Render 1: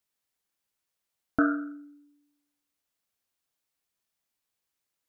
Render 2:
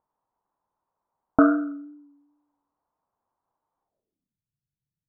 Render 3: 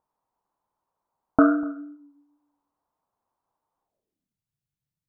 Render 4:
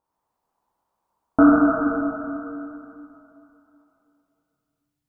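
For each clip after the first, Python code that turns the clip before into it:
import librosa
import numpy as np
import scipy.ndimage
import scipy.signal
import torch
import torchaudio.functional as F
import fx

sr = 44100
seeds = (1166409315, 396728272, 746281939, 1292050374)

y1 = fx.wow_flutter(x, sr, seeds[0], rate_hz=2.1, depth_cents=28.0)
y1 = scipy.signal.sosfilt(scipy.signal.butter(2, 1500.0, 'lowpass', fs=sr, output='sos'), y1)
y1 = fx.filter_sweep_lowpass(y1, sr, from_hz=960.0, to_hz=140.0, start_s=3.83, end_s=4.39, q=4.4)
y1 = y1 * 10.0 ** (6.5 / 20.0)
y2 = y1 + 10.0 ** (-22.5 / 20.0) * np.pad(y1, (int(246 * sr / 1000.0), 0))[:len(y1)]
y3 = fx.rev_plate(y2, sr, seeds[1], rt60_s=2.9, hf_ratio=0.85, predelay_ms=0, drr_db=-7.0)
y3 = y3 * 10.0 ** (-2.0 / 20.0)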